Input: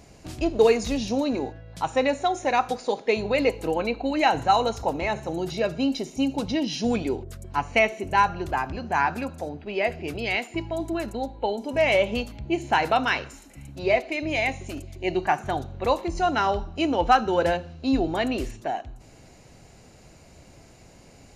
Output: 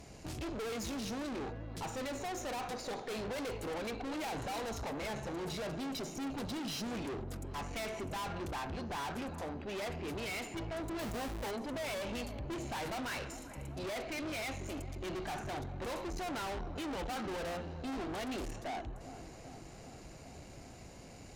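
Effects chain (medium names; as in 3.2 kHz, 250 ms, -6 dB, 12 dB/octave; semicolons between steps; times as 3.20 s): 10.99–11.51 s: square wave that keeps the level; valve stage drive 38 dB, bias 0.45; feedback echo behind a low-pass 395 ms, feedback 73%, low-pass 1.4 kHz, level -13 dB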